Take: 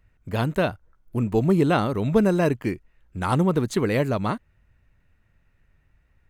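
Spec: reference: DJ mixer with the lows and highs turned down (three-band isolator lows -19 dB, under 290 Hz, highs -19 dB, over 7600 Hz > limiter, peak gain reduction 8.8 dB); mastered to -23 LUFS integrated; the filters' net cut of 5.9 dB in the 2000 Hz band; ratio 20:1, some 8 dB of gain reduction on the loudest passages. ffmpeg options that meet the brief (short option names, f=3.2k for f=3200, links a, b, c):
-filter_complex "[0:a]equalizer=f=2k:t=o:g=-8.5,acompressor=threshold=-22dB:ratio=20,acrossover=split=290 7600:gain=0.112 1 0.112[a][b][c];[a][b][c]amix=inputs=3:normalize=0,volume=13dB,alimiter=limit=-11dB:level=0:latency=1"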